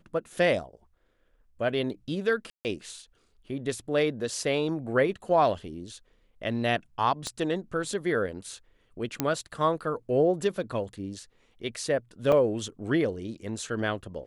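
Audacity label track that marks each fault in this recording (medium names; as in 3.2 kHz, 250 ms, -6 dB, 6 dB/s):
2.500000	2.650000	dropout 149 ms
7.270000	7.270000	pop -19 dBFS
9.200000	9.200000	pop -9 dBFS
12.320000	12.320000	dropout 4 ms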